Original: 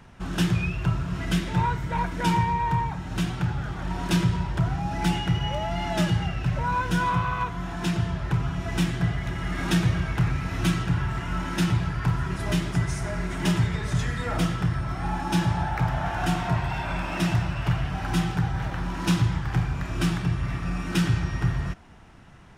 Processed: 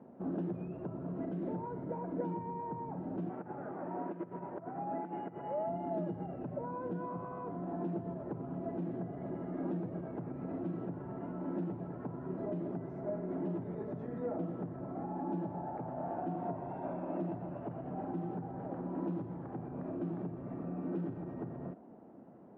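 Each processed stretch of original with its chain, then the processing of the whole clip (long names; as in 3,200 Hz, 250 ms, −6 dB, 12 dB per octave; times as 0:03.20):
0:03.29–0:05.67: low-pass filter 2,200 Hz 24 dB per octave + compressor whose output falls as the input rises −28 dBFS + spectral tilt +4 dB per octave
whole clip: downward compressor, threshold −24 dBFS; brickwall limiter −25 dBFS; Chebyshev band-pass filter 240–610 Hz, order 2; level +3.5 dB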